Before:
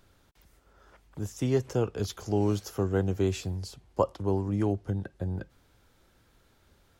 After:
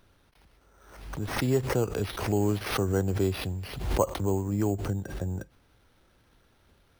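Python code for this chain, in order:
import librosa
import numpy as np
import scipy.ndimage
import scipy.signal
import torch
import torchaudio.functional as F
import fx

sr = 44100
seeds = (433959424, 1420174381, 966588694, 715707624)

y = np.repeat(x[::6], 6)[:len(x)]
y = fx.pre_swell(y, sr, db_per_s=66.0)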